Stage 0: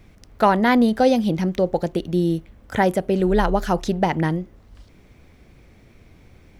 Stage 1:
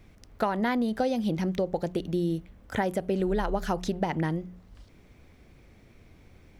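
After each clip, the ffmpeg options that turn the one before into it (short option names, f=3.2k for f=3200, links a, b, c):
-af "bandreject=f=60.05:t=h:w=4,bandreject=f=120.1:t=h:w=4,bandreject=f=180.15:t=h:w=4,acompressor=threshold=-18dB:ratio=10,volume=-4.5dB"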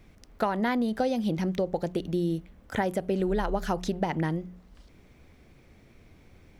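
-af "bandreject=f=50:t=h:w=6,bandreject=f=100:t=h:w=6"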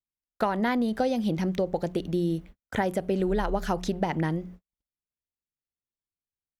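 -af "agate=range=-51dB:threshold=-44dB:ratio=16:detection=peak,volume=1dB"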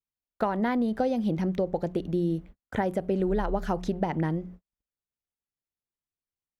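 -af "highshelf=f=2.1k:g=-9"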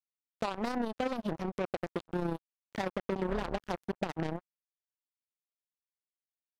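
-af "acrusher=bits=3:mix=0:aa=0.5,tremolo=f=31:d=0.462,volume=-5.5dB"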